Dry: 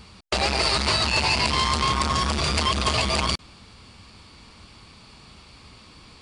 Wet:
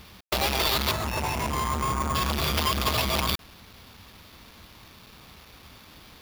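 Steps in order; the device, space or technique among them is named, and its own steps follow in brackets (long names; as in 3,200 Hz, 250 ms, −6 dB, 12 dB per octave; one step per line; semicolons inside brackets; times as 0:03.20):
0:00.91–0:02.15: Bessel low-pass filter 1,600 Hz, order 2
early 8-bit sampler (sample-rate reduction 8,100 Hz, jitter 0%; bit reduction 8 bits)
level −2.5 dB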